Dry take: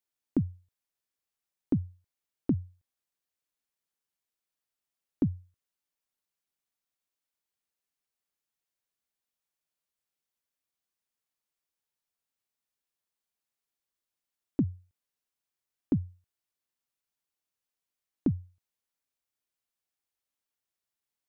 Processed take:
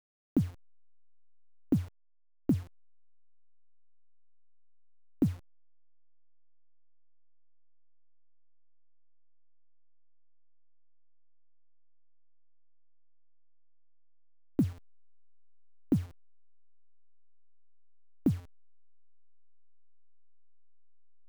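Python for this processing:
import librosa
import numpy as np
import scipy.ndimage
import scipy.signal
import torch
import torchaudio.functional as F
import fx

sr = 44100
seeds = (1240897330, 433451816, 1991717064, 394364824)

y = fx.delta_hold(x, sr, step_db=-44.5)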